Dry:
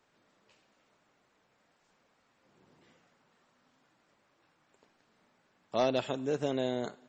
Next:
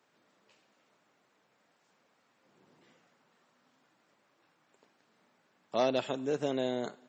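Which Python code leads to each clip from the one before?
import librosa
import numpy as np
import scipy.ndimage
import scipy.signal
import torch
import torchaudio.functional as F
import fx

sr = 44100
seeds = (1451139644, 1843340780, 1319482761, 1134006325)

y = scipy.signal.sosfilt(scipy.signal.butter(2, 140.0, 'highpass', fs=sr, output='sos'), x)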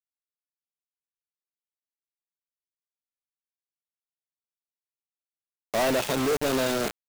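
y = fx.quant_companded(x, sr, bits=2)
y = F.gain(torch.from_numpy(y), 3.0).numpy()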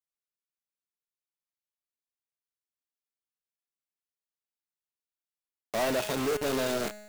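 y = fx.comb_fb(x, sr, f0_hz=210.0, decay_s=1.2, harmonics='all', damping=0.0, mix_pct=70)
y = F.gain(torch.from_numpy(y), 5.5).numpy()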